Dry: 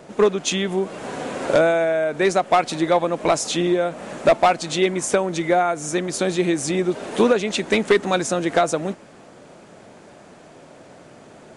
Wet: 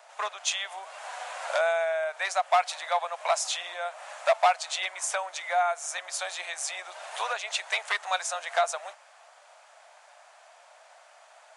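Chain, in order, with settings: steep high-pass 650 Hz 48 dB/oct; gain -4.5 dB

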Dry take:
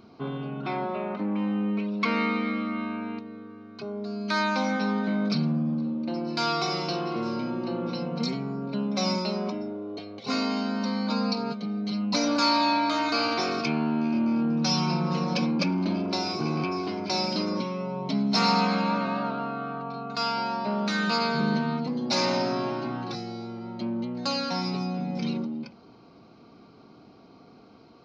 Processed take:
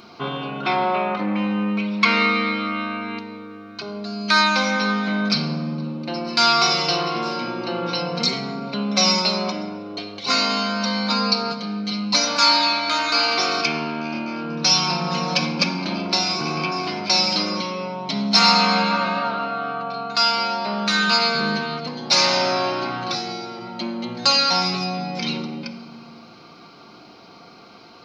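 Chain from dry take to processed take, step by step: tilt shelf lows -7.5 dB, about 690 Hz; in parallel at -2 dB: vocal rider 2 s; on the sum: shoebox room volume 2000 m³, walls mixed, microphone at 0.86 m; gain -1.5 dB

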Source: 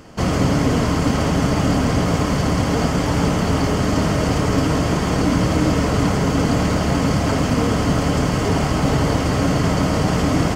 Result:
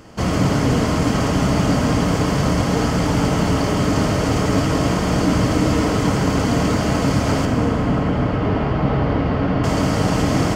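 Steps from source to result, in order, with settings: 7.45–9.64 air absorption 370 m; plate-style reverb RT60 2.6 s, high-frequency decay 1×, DRR 4.5 dB; gain -1 dB

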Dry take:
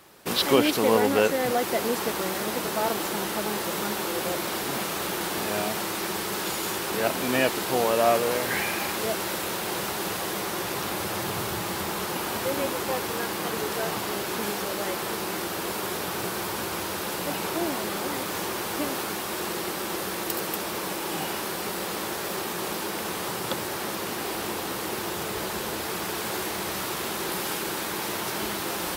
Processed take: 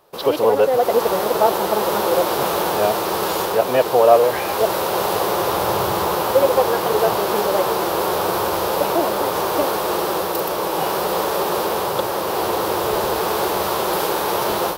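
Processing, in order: AGC gain up to 14 dB; time stretch by phase-locked vocoder 0.51×; graphic EQ 250/500/1000/2000/8000 Hz -8/+8/+5/-7/-7 dB; gain -3 dB

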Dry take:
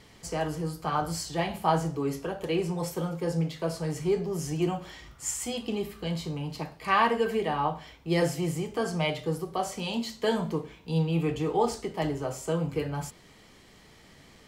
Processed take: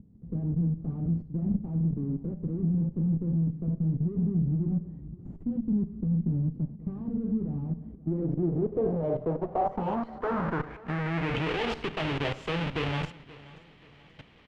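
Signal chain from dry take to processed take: half-waves squared off; level quantiser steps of 16 dB; one-sided clip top -39.5 dBFS; low-pass sweep 210 Hz -> 2900 Hz, 7.69–11.61; on a send: feedback echo 0.531 s, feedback 40%, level -20 dB; on the sum: gain +5 dB

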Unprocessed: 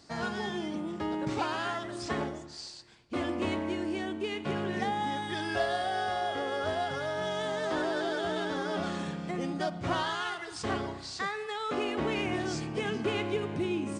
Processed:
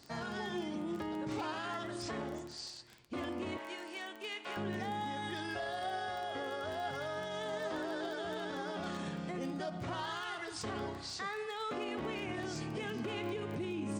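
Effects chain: 3.57–4.57 Bessel high-pass 920 Hz, order 2; limiter -29 dBFS, peak gain reduction 10 dB; crackle 15/s -37 dBFS; flange 0.32 Hz, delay 7.5 ms, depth 2.3 ms, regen +79%; gain +2.5 dB

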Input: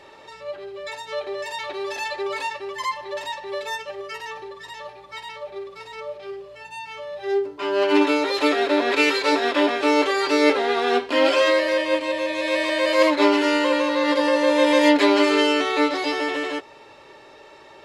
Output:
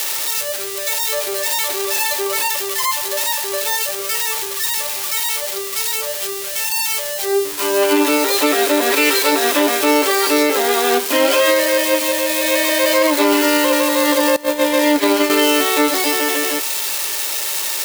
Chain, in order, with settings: switching spikes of -14.5 dBFS; 14.36–15.3 gate -16 dBFS, range -20 dB; maximiser +9 dB; gain -4.5 dB

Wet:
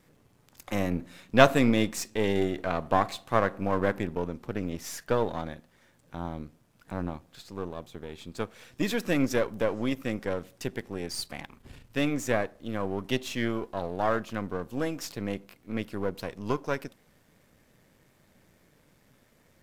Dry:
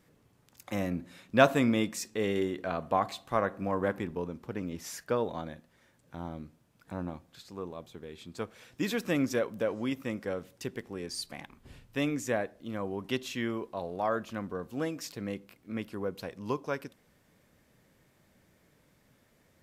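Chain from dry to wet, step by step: half-wave gain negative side -7 dB; gain +5.5 dB

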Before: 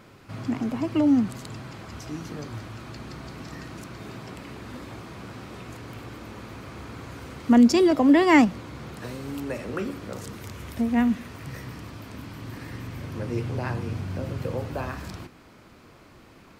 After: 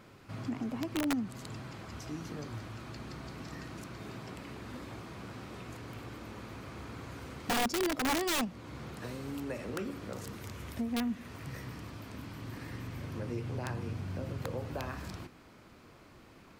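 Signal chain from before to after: compressor 2:1, threshold -30 dBFS, peak gain reduction 10 dB; wrapped overs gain 20.5 dB; gain -5 dB

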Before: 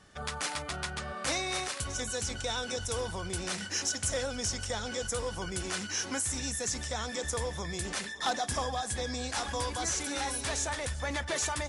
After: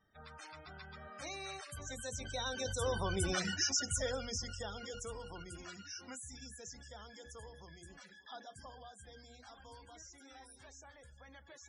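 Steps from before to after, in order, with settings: Doppler pass-by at 3.31, 15 m/s, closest 6.2 m; notches 60/120/180/240/300/360/420/480/540 Hz; loudest bins only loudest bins 64; gain +3 dB

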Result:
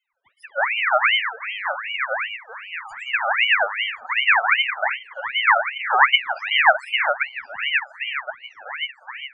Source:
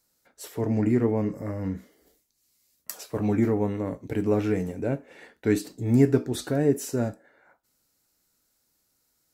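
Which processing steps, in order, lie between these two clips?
median filter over 3 samples; in parallel at -2 dB: compressor, threshold -29 dBFS, peak gain reduction 15 dB; on the sum: tone controls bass -4 dB, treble -4 dB; loudest bins only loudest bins 4; EQ curve 200 Hz 0 dB, 450 Hz +9 dB, 950 Hz -2 dB; on a send: dark delay 1.073 s, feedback 45%, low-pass 3200 Hz, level -7 dB; on the sum: ring modulator with a swept carrier 1800 Hz, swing 45%, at 2.6 Hz; gain +3 dB

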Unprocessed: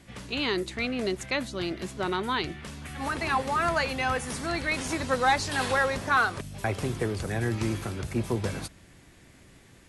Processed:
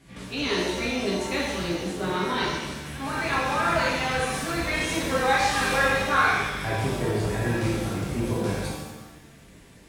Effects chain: shimmer reverb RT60 1.1 s, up +7 st, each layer -8 dB, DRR -7 dB; gain -5.5 dB

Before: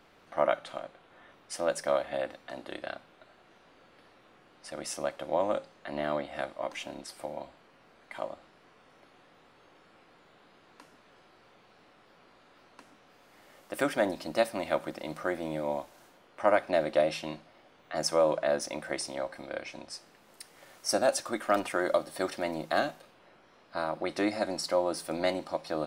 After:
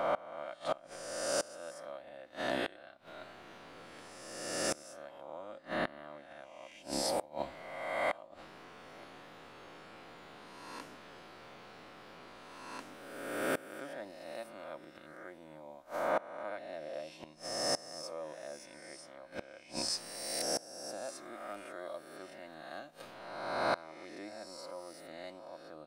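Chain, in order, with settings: spectral swells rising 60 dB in 1.47 s; flipped gate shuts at -24 dBFS, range -24 dB; gain +4 dB

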